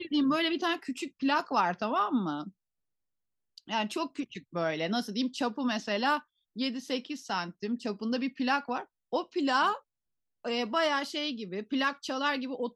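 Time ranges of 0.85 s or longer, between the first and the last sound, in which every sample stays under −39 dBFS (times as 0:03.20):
0:02.49–0:03.58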